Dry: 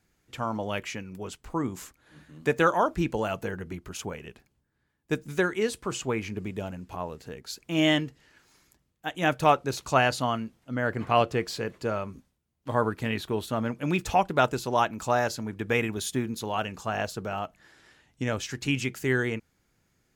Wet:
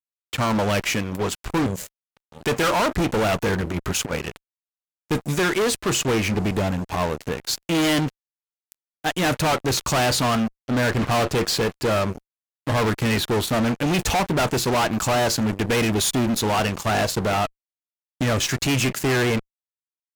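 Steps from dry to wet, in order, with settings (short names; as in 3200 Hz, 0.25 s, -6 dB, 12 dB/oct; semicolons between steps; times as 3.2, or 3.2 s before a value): 1.66–2.41 EQ curve 180 Hz 0 dB, 280 Hz -26 dB, 560 Hz +12 dB, 1100 Hz -25 dB, 1700 Hz -7 dB, 11000 Hz -1 dB; 3.61–4.23 negative-ratio compressor -37 dBFS, ratio -0.5; fuzz box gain 36 dB, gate -45 dBFS; gain -5 dB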